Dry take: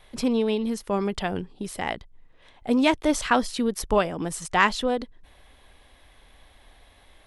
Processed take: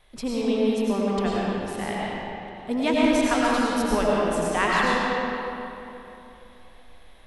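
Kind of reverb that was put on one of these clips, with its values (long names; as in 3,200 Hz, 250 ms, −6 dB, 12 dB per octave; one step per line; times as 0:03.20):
comb and all-pass reverb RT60 3.1 s, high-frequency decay 0.65×, pre-delay 60 ms, DRR −6 dB
level −5.5 dB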